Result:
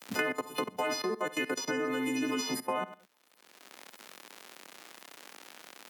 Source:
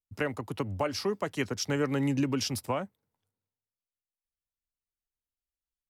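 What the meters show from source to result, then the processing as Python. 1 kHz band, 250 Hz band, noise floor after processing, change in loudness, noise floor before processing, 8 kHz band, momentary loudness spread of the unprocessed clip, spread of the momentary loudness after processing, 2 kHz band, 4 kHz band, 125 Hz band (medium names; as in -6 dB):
+1.5 dB, -3.0 dB, -64 dBFS, -1.5 dB, under -85 dBFS, +0.5 dB, 7 LU, 18 LU, +4.0 dB, -0.5 dB, -16.5 dB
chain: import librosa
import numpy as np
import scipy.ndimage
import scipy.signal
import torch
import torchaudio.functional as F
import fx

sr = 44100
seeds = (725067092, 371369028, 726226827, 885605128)

y = fx.freq_snap(x, sr, grid_st=3)
y = fx.dmg_crackle(y, sr, seeds[0], per_s=120.0, level_db=-48.0)
y = fx.cheby_harmonics(y, sr, harmonics=(2, 5), levels_db=(-17, -41), full_scale_db=-11.0)
y = fx.high_shelf(y, sr, hz=4700.0, db=-7.5)
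y = fx.echo_feedback(y, sr, ms=66, feedback_pct=31, wet_db=-9.5)
y = fx.level_steps(y, sr, step_db=17)
y = scipy.signal.sosfilt(scipy.signal.butter(4, 210.0, 'highpass', fs=sr, output='sos'), y)
y = fx.band_squash(y, sr, depth_pct=100)
y = y * 10.0 ** (3.5 / 20.0)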